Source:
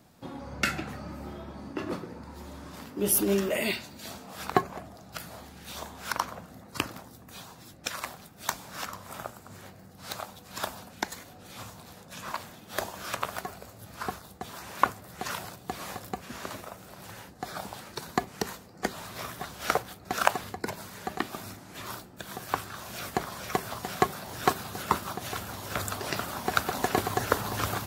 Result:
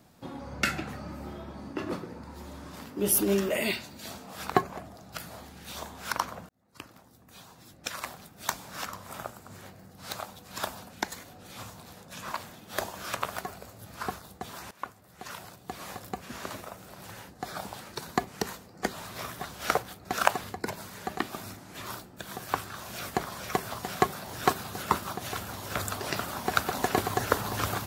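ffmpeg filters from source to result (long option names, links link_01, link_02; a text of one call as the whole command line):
ffmpeg -i in.wav -filter_complex "[0:a]asplit=3[link_01][link_02][link_03];[link_01]atrim=end=6.49,asetpts=PTS-STARTPTS,afade=type=out:start_time=6.486:duration=0.004:curve=hsin[link_04];[link_02]atrim=start=6.49:end=14.71,asetpts=PTS-STARTPTS,afade=type=in:duration=1.7,afade=type=out:start_time=8.216:duration=0.004:curve=hsin:silence=0.125893[link_05];[link_03]atrim=start=14.71,asetpts=PTS-STARTPTS,afade=type=in:duration=1.62:silence=0.125893[link_06];[link_04][link_05][link_06]concat=n=3:v=0:a=1" out.wav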